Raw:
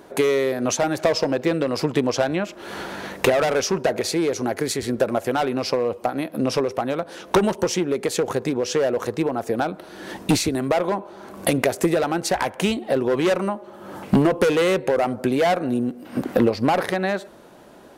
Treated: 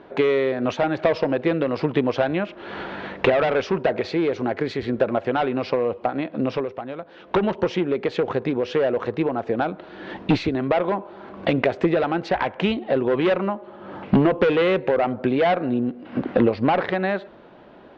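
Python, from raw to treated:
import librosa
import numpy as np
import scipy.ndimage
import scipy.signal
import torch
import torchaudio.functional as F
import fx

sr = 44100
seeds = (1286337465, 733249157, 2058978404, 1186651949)

y = fx.edit(x, sr, fx.fade_down_up(start_s=6.35, length_s=1.23, db=-8.0, fade_s=0.45), tone=tone)
y = scipy.signal.sosfilt(scipy.signal.cheby2(4, 70, 12000.0, 'lowpass', fs=sr, output='sos'), y)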